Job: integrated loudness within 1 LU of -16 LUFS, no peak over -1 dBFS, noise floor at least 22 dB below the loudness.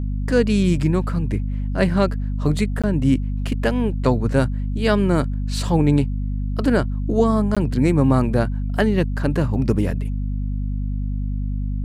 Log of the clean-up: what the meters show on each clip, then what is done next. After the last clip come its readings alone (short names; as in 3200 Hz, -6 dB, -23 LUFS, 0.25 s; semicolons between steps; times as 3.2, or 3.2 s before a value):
dropouts 2; longest dropout 16 ms; hum 50 Hz; harmonics up to 250 Hz; hum level -21 dBFS; loudness -21.0 LUFS; peak -4.5 dBFS; loudness target -16.0 LUFS
-> interpolate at 2.82/7.55, 16 ms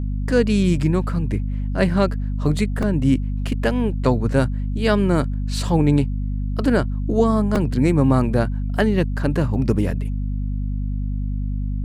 dropouts 0; hum 50 Hz; harmonics up to 250 Hz; hum level -21 dBFS
-> de-hum 50 Hz, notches 5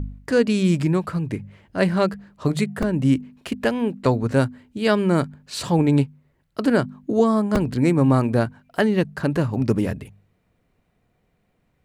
hum none; loudness -21.5 LUFS; peak -5.0 dBFS; loudness target -16.0 LUFS
-> gain +5.5 dB; limiter -1 dBFS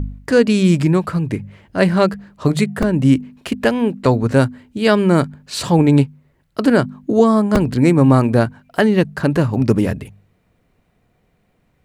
loudness -16.5 LUFS; peak -1.0 dBFS; noise floor -62 dBFS